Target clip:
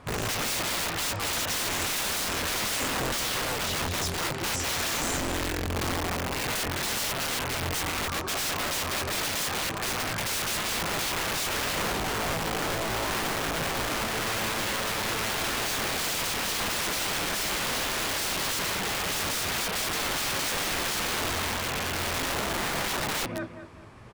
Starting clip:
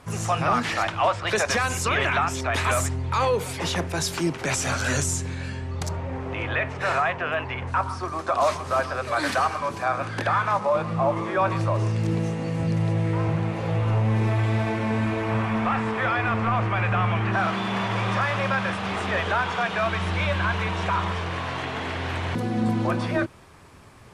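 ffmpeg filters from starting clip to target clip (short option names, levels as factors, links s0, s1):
-filter_complex "[0:a]aemphasis=mode=reproduction:type=cd,aecho=1:1:206|412|618:0.316|0.0949|0.0285,acrossover=split=4400[s0][s1];[s0]aeval=exprs='(mod(16.8*val(0)+1,2)-1)/16.8':c=same[s2];[s2][s1]amix=inputs=2:normalize=0"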